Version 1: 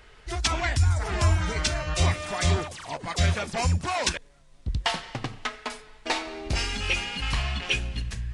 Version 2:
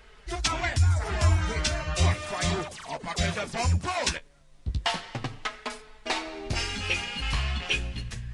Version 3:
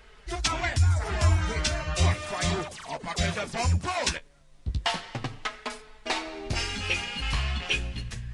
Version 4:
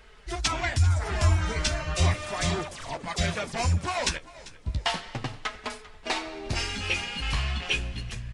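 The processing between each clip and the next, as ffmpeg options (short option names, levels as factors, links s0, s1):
-af "flanger=delay=4.5:depth=9.1:regen=-35:speed=0.34:shape=sinusoidal,volume=1.33"
-af anull
-filter_complex "[0:a]asplit=5[s0][s1][s2][s3][s4];[s1]adelay=394,afreqshift=-46,volume=0.112[s5];[s2]adelay=788,afreqshift=-92,volume=0.0603[s6];[s3]adelay=1182,afreqshift=-138,volume=0.0327[s7];[s4]adelay=1576,afreqshift=-184,volume=0.0176[s8];[s0][s5][s6][s7][s8]amix=inputs=5:normalize=0"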